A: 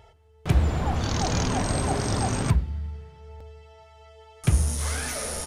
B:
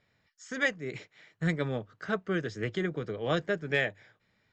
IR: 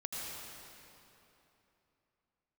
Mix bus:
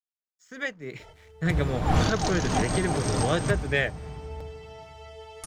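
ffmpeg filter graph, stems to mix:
-filter_complex "[0:a]aecho=1:1:6.5:0.31,adelay=1000,volume=-5.5dB,asplit=2[a][b];[b]volume=-19dB[c];[1:a]aeval=exprs='sgn(val(0))*max(abs(val(0))-0.001,0)':c=same,volume=-8.5dB,asplit=2[d][e];[e]apad=whole_len=285291[f];[a][f]sidechaincompress=threshold=-52dB:ratio=8:attack=34:release=180[g];[2:a]atrim=start_sample=2205[h];[c][h]afir=irnorm=-1:irlink=0[i];[g][d][i]amix=inputs=3:normalize=0,dynaudnorm=f=230:g=7:m=11.5dB"

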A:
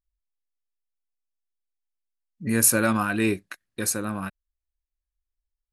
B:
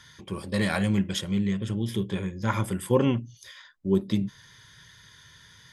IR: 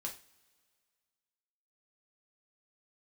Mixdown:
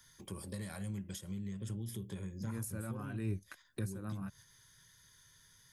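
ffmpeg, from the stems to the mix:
-filter_complex "[0:a]volume=-1.5dB[a];[1:a]agate=range=-7dB:threshold=-47dB:ratio=16:detection=peak,aemphasis=mode=production:type=75kf,acompressor=threshold=-25dB:ratio=6,volume=-12dB,asplit=2[b][c];[c]apad=whole_len=252673[d];[a][d]sidechaincompress=threshold=-48dB:ratio=10:attack=5.8:release=250[e];[e][b]amix=inputs=2:normalize=0,acontrast=39,equalizer=f=3.1k:t=o:w=1.7:g=-7,acrossover=split=130[f][g];[g]acompressor=threshold=-44dB:ratio=6[h];[f][h]amix=inputs=2:normalize=0"

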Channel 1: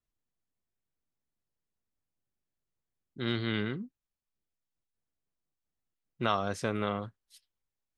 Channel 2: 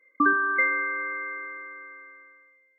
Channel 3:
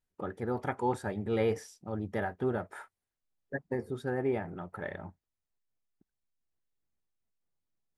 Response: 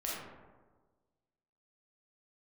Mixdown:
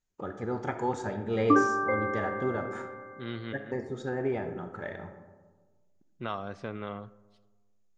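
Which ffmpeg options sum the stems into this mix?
-filter_complex "[0:a]aemphasis=mode=reproduction:type=50fm,volume=-6.5dB,asplit=2[a][b];[b]volume=-20dB[c];[1:a]lowpass=f=750:t=q:w=6.5,adelay=1300,volume=2dB[d];[2:a]lowpass=f=6.8k:t=q:w=7.7,volume=-2.5dB,asplit=3[e][f][g];[f]volume=-6.5dB[h];[g]apad=whole_len=351532[i];[a][i]sidechaincompress=threshold=-51dB:ratio=4:attack=7.8:release=174[j];[3:a]atrim=start_sample=2205[k];[c][h]amix=inputs=2:normalize=0[l];[l][k]afir=irnorm=-1:irlink=0[m];[j][d][e][m]amix=inputs=4:normalize=0,lowpass=5k"

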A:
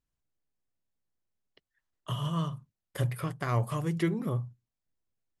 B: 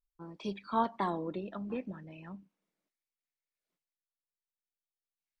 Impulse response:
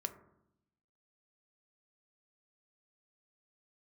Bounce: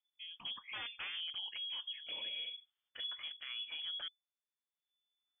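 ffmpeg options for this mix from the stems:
-filter_complex "[0:a]volume=-9dB,asplit=3[a][b][c];[a]atrim=end=4.08,asetpts=PTS-STARTPTS,afade=t=out:st=4.076:d=0.004:c=hsin[d];[b]atrim=start=4.08:end=4.78,asetpts=PTS-STARTPTS,volume=0[e];[c]atrim=start=4.78,asetpts=PTS-STARTPTS,afade=t=in:d=0.004:c=hsin[f];[d][e][f]concat=n=3:v=0:a=1[g];[1:a]aeval=exprs='0.0299*(abs(mod(val(0)/0.0299+3,4)-2)-1)':c=same,volume=-2.5dB[h];[g][h]amix=inputs=2:normalize=0,lowpass=f=3k:t=q:w=0.5098,lowpass=f=3k:t=q:w=0.6013,lowpass=f=3k:t=q:w=0.9,lowpass=f=3k:t=q:w=2.563,afreqshift=-3500,alimiter=level_in=10.5dB:limit=-24dB:level=0:latency=1:release=57,volume=-10.5dB"

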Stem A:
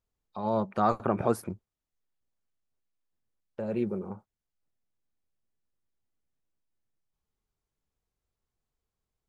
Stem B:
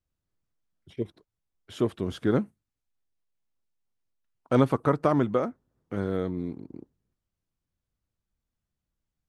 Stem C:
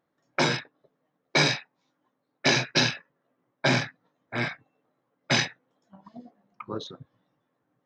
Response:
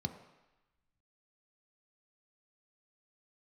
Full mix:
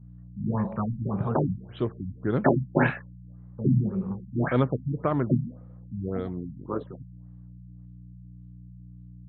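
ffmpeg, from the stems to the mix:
-filter_complex "[0:a]alimiter=limit=-15.5dB:level=0:latency=1:release=305,aeval=exprs='val(0)+0.00316*(sin(2*PI*60*n/s)+sin(2*PI*2*60*n/s)/2+sin(2*PI*3*60*n/s)/3+sin(2*PI*4*60*n/s)/4+sin(2*PI*5*60*n/s)/5)':c=same,volume=-1dB,asplit=2[a][b];[b]volume=-3.5dB[c];[1:a]volume=-2dB,asplit=2[d][e];[e]volume=-19.5dB[f];[2:a]lowpass=f=1.9k:w=0.5412,lowpass=f=1.9k:w=1.3066,dynaudnorm=f=280:g=11:m=10dB,volume=-3dB[g];[3:a]atrim=start_sample=2205[h];[c][f]amix=inputs=2:normalize=0[i];[i][h]afir=irnorm=-1:irlink=0[j];[a][d][g][j]amix=inputs=4:normalize=0,afftfilt=real='re*lt(b*sr/1024,240*pow(4400/240,0.5+0.5*sin(2*PI*1.8*pts/sr)))':imag='im*lt(b*sr/1024,240*pow(4400/240,0.5+0.5*sin(2*PI*1.8*pts/sr)))':win_size=1024:overlap=0.75"

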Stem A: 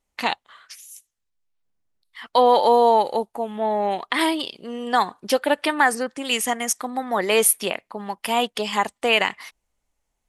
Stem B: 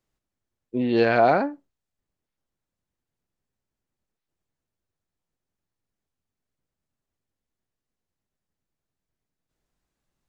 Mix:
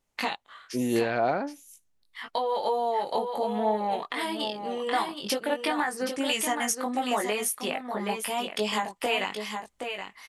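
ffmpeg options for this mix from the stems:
-filter_complex "[0:a]acompressor=threshold=-23dB:ratio=6,flanger=delay=18.5:depth=2.2:speed=0.8,volume=2.5dB,asplit=2[a][b];[b]volume=-7.5dB[c];[1:a]volume=-3.5dB[d];[c]aecho=0:1:772:1[e];[a][d][e]amix=inputs=3:normalize=0,alimiter=limit=-15dB:level=0:latency=1:release=435"

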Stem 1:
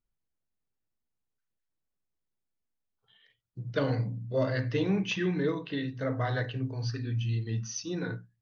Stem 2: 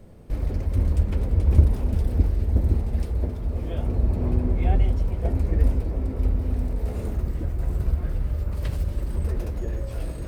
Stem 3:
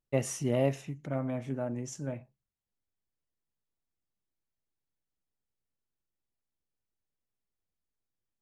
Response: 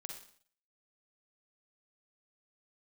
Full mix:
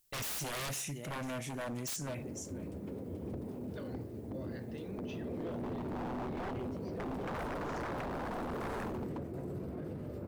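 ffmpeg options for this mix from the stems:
-filter_complex "[0:a]volume=-18dB[a];[1:a]highpass=f=110:w=0.5412,highpass=f=110:w=1.3066,equalizer=f=330:t=o:w=2.4:g=13,adelay=1750,volume=-1dB,afade=t=in:st=4.8:d=0.47:silence=0.334965,afade=t=in:st=7.06:d=0.52:silence=0.398107,afade=t=out:st=8.74:d=0.53:silence=0.281838[b];[2:a]crystalizer=i=7.5:c=0,volume=2.5dB,asplit=2[c][d];[d]volume=-20dB,aecho=0:1:495:1[e];[a][b][c][e]amix=inputs=4:normalize=0,aeval=exprs='0.0398*(abs(mod(val(0)/0.0398+3,4)-2)-1)':c=same,alimiter=level_in=9.5dB:limit=-24dB:level=0:latency=1:release=16,volume=-9.5dB"

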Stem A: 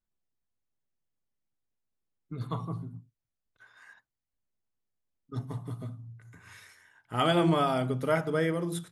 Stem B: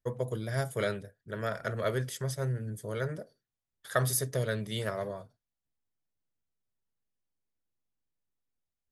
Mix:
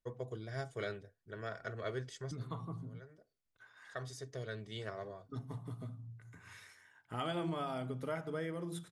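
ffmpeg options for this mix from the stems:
-filter_complex "[0:a]lowpass=11k,acompressor=threshold=-39dB:ratio=2,volume=-3.5dB,asplit=2[a][b];[1:a]lowpass=f=7.1k:w=0.5412,lowpass=f=7.1k:w=1.3066,aecho=1:1:2.7:0.37,volume=-9dB[c];[b]apad=whole_len=393346[d];[c][d]sidechaincompress=threshold=-58dB:ratio=4:attack=35:release=1480[e];[a][e]amix=inputs=2:normalize=0"

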